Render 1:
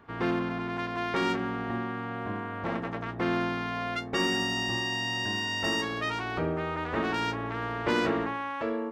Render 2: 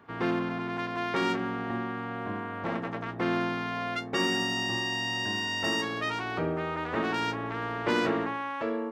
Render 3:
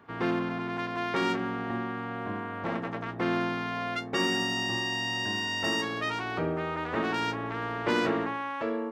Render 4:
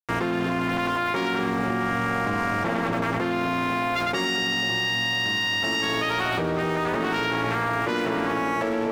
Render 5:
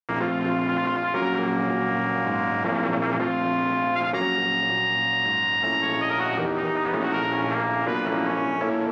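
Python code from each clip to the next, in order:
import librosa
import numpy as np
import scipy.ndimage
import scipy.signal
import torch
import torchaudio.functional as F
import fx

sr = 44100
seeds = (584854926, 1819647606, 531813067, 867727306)

y1 = scipy.signal.sosfilt(scipy.signal.butter(2, 100.0, 'highpass', fs=sr, output='sos'), x)
y2 = y1
y3 = np.sign(y2) * np.maximum(np.abs(y2) - 10.0 ** (-43.0 / 20.0), 0.0)
y3 = fx.echo_split(y3, sr, split_hz=820.0, low_ms=247, high_ms=105, feedback_pct=52, wet_db=-6)
y3 = fx.env_flatten(y3, sr, amount_pct=100)
y4 = fx.bandpass_edges(y3, sr, low_hz=130.0, high_hz=2600.0)
y4 = y4 + 10.0 ** (-5.0 / 20.0) * np.pad(y4, (int(76 * sr / 1000.0), 0))[:len(y4)]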